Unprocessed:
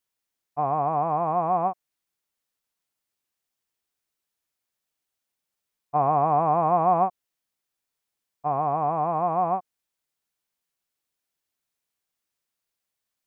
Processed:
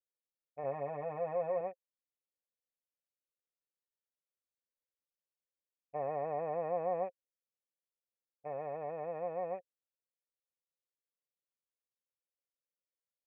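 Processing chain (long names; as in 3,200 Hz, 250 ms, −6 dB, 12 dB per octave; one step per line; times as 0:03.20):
adaptive Wiener filter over 41 samples
formant resonators in series e
0:00.63–0:01.61: comb filter 7.5 ms, depth 82%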